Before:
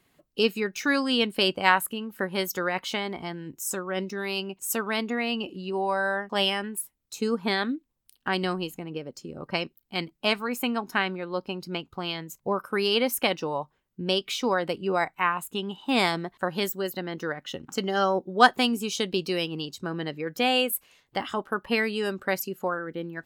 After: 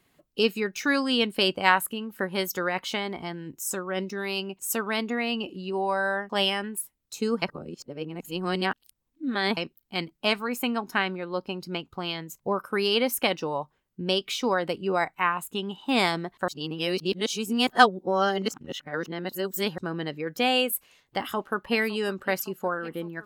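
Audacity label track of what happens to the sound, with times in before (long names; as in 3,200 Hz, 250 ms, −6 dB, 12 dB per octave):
7.420000	9.570000	reverse
16.480000	19.780000	reverse
20.670000	21.760000	delay throw 560 ms, feedback 70%, level −18 dB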